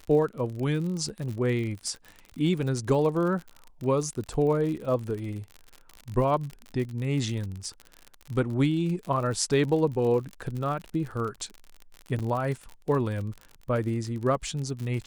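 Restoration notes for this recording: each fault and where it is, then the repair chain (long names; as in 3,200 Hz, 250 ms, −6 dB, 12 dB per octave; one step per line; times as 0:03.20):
surface crackle 55 per second −33 dBFS
0:12.19–0:12.20: drop-out 7.5 ms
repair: click removal
repair the gap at 0:12.19, 7.5 ms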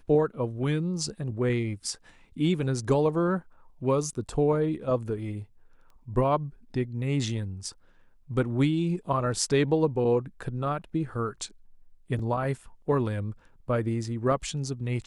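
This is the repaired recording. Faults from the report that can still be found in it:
none of them is left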